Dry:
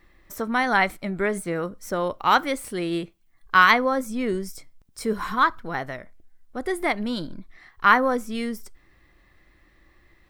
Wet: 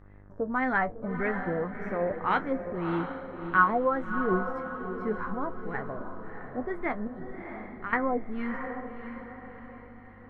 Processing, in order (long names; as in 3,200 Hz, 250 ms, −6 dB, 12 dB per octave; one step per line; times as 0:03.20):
low-shelf EQ 440 Hz +11.5 dB
0:07.07–0:07.93: downward compressor 3 to 1, threshold −31 dBFS, peak gain reduction 16.5 dB
auto-filter low-pass sine 1.8 Hz 610–2,200 Hz
hum with harmonics 50 Hz, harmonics 36, −40 dBFS −6 dB per octave
flanger 0.52 Hz, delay 9.5 ms, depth 3 ms, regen +44%
on a send: feedback delay with all-pass diffusion 650 ms, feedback 46%, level −8 dB
on the sum: level −8.5 dB